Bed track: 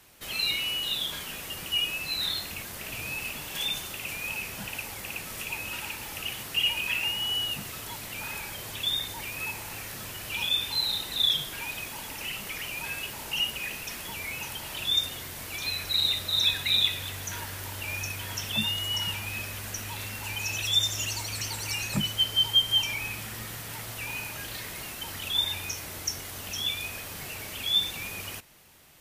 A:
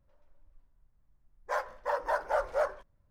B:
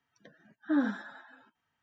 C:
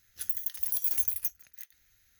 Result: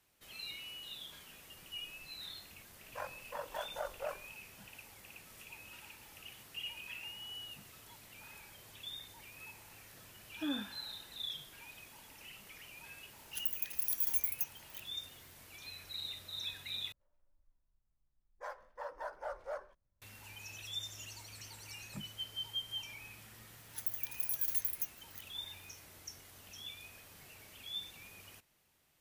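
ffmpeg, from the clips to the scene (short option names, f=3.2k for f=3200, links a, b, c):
-filter_complex "[1:a]asplit=2[a][b];[3:a]asplit=2[c][d];[0:a]volume=-17.5dB[e];[a]tremolo=f=46:d=0.667[f];[e]asplit=2[g][h];[g]atrim=end=16.924[i];[b]atrim=end=3.1,asetpts=PTS-STARTPTS,volume=-13dB[j];[h]atrim=start=20.016[k];[f]atrim=end=3.1,asetpts=PTS-STARTPTS,volume=-8.5dB,afade=t=in:d=0.004:c=hsin,afade=t=out:st=3.096:d=0.004:c=hsin,adelay=1460[l];[2:a]atrim=end=1.82,asetpts=PTS-STARTPTS,volume=-10.5dB,afade=t=in:d=0.004:c=hsin,afade=t=out:st=1.816:d=0.004:c=hsin,adelay=9720[m];[c]atrim=end=2.19,asetpts=PTS-STARTPTS,volume=-5dB,afade=t=in:d=0.004:c=hsin,afade=t=out:st=2.186:d=0.004:c=hsin,adelay=580356S[n];[d]atrim=end=2.19,asetpts=PTS-STARTPTS,volume=-6.5dB,afade=t=in:d=0.004:c=hsin,afade=t=out:st=2.186:d=0.004:c=hsin,adelay=23570[o];[i][j]acrossfade=d=0.004:c1=hsin:c2=hsin[p];[p][k]acrossfade=d=0.004:c1=hsin:c2=hsin[q];[q][l][m][n][o]amix=inputs=5:normalize=0"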